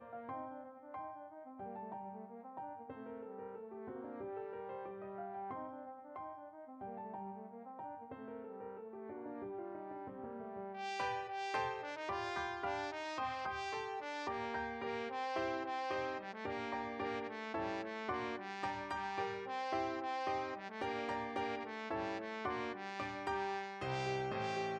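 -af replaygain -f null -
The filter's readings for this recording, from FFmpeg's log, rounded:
track_gain = +23.3 dB
track_peak = 0.043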